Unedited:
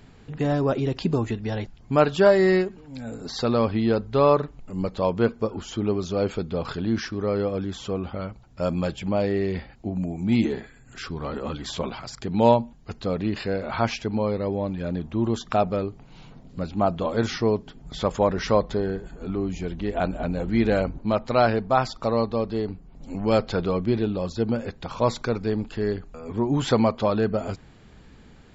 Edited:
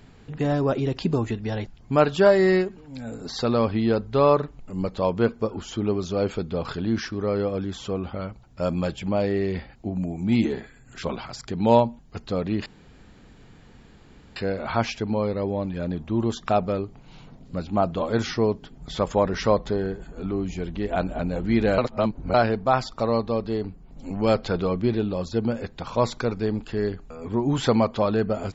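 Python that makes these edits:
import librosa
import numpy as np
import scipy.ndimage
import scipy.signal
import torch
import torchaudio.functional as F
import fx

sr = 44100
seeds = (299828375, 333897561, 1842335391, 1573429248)

y = fx.edit(x, sr, fx.cut(start_s=11.03, length_s=0.74),
    fx.insert_room_tone(at_s=13.4, length_s=1.7),
    fx.reverse_span(start_s=20.82, length_s=0.56), tone=tone)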